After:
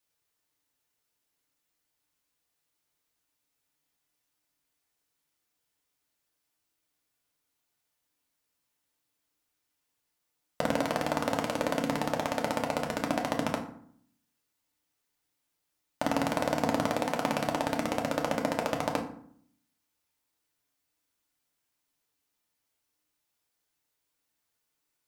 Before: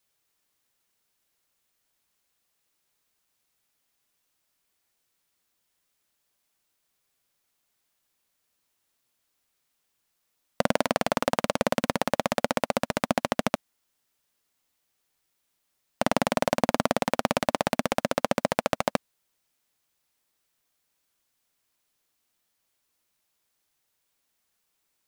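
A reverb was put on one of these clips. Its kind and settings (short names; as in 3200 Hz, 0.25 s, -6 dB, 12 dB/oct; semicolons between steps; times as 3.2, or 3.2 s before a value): FDN reverb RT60 0.61 s, low-frequency decay 1.4×, high-frequency decay 0.6×, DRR 1 dB; gain -6.5 dB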